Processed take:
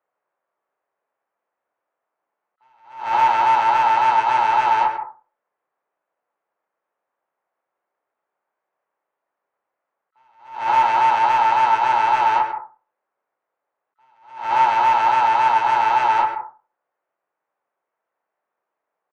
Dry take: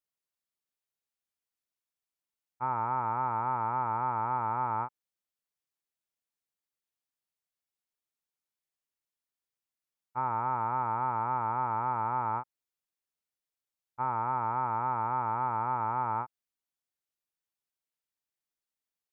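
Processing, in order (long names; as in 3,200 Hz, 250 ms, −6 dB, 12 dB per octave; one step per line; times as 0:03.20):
adaptive Wiener filter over 9 samples
high-pass filter 93 Hz 24 dB per octave
parametric band 500 Hz +15 dB 2.8 octaves
in parallel at −7 dB: sine wavefolder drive 15 dB, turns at −9 dBFS
on the sum: three-way crossover with the lows and the highs turned down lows −16 dB, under 600 Hz, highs −21 dB, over 2,100 Hz
pitch-shifted copies added +7 semitones −17 dB
double-tracking delay 30 ms −9 dB
on a send at −7.5 dB: convolution reverb RT60 0.35 s, pre-delay 109 ms
on the sum: level that may rise only so fast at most 110 dB per second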